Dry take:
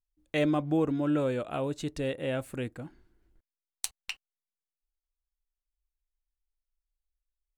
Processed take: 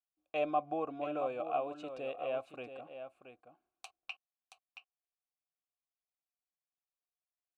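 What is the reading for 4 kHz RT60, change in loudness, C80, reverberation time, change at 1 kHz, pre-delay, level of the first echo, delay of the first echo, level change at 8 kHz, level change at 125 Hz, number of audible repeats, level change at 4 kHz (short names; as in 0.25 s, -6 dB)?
none, -7.0 dB, none, none, +2.5 dB, none, -9.5 dB, 0.675 s, -23.0 dB, -22.5 dB, 1, -11.0 dB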